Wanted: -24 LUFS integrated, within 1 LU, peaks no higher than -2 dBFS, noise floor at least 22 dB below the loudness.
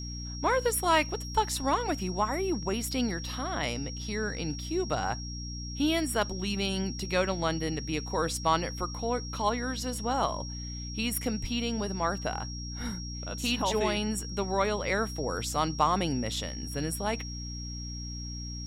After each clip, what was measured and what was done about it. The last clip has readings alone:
hum 60 Hz; harmonics up to 300 Hz; hum level -36 dBFS; steady tone 5600 Hz; tone level -41 dBFS; loudness -30.5 LUFS; peak -10.0 dBFS; loudness target -24.0 LUFS
-> notches 60/120/180/240/300 Hz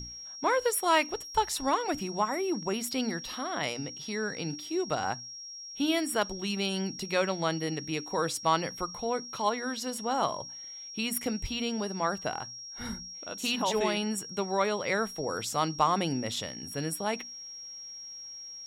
hum none; steady tone 5600 Hz; tone level -41 dBFS
-> notch 5600 Hz, Q 30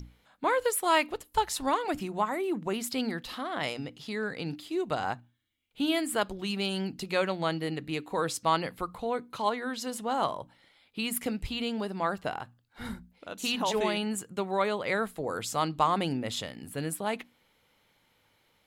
steady tone none; loudness -31.0 LUFS; peak -10.0 dBFS; loudness target -24.0 LUFS
-> gain +7 dB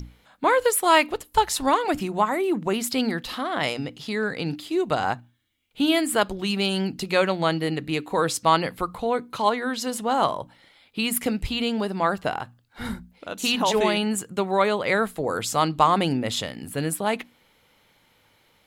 loudness -24.0 LUFS; peak -3.0 dBFS; noise floor -62 dBFS

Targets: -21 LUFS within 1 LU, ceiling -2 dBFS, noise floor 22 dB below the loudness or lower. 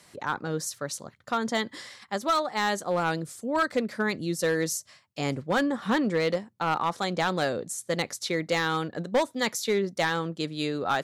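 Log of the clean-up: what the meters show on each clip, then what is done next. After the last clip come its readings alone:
clipped 0.8%; flat tops at -18.0 dBFS; loudness -28.5 LUFS; peak -18.0 dBFS; loudness target -21.0 LUFS
-> clip repair -18 dBFS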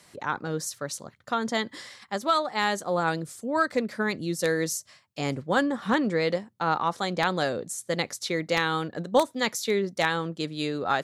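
clipped 0.0%; loudness -27.5 LUFS; peak -9.0 dBFS; loudness target -21.0 LUFS
-> gain +6.5 dB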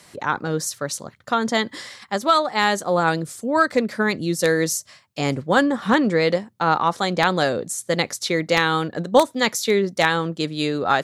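loudness -21.0 LUFS; peak -2.5 dBFS; noise floor -53 dBFS

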